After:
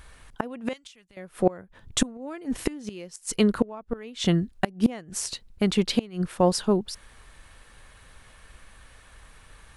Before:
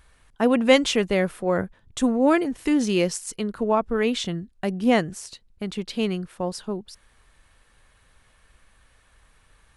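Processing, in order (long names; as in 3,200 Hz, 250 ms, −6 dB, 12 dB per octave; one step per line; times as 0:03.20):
gate with flip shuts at −16 dBFS, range −26 dB
0:00.73–0:01.17: guitar amp tone stack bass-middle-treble 5-5-5
level +7.5 dB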